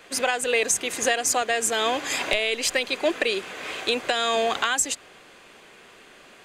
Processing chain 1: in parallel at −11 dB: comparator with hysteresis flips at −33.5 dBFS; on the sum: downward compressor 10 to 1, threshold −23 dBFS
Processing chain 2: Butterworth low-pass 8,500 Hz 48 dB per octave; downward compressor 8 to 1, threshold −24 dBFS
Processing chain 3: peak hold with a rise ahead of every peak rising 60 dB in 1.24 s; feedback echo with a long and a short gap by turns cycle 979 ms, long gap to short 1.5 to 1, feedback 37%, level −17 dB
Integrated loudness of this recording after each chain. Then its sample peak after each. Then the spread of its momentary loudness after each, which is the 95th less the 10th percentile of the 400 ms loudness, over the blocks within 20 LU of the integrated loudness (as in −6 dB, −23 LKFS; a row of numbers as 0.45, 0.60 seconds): −27.0, −28.5, −19.0 LKFS; −10.5, −11.0, −2.0 dBFS; 3, 4, 16 LU